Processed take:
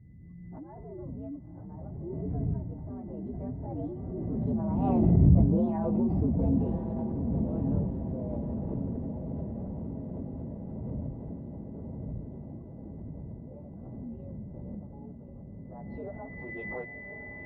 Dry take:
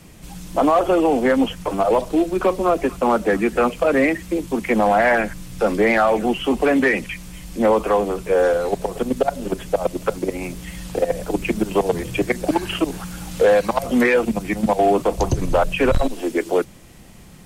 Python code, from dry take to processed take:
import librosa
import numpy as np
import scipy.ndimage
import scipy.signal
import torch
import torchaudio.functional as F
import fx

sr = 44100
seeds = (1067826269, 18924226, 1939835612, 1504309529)

p1 = fx.partial_stretch(x, sr, pct=123)
p2 = fx.dmg_wind(p1, sr, seeds[0], corner_hz=150.0, level_db=-29.0)
p3 = fx.doppler_pass(p2, sr, speed_mps=16, closest_m=6.0, pass_at_s=5.66)
p4 = scipy.signal.sosfilt(scipy.signal.butter(2, 72.0, 'highpass', fs=sr, output='sos'), p3)
p5 = fx.peak_eq(p4, sr, hz=740.0, db=5.0, octaves=0.65)
p6 = fx.rider(p5, sr, range_db=4, speed_s=0.5)
p7 = p5 + F.gain(torch.from_numpy(p6), 2.0).numpy()
p8 = p7 + 10.0 ** (-36.0 / 20.0) * np.sin(2.0 * np.pi * 2000.0 * np.arange(len(p7)) / sr)
p9 = fx.filter_sweep_lowpass(p8, sr, from_hz=170.0, to_hz=1500.0, start_s=15.46, end_s=16.58, q=0.86)
p10 = fx.echo_diffused(p9, sr, ms=1085, feedback_pct=70, wet_db=-6)
p11 = fx.pre_swell(p10, sr, db_per_s=20.0)
y = F.gain(torch.from_numpy(p11), -1.5).numpy()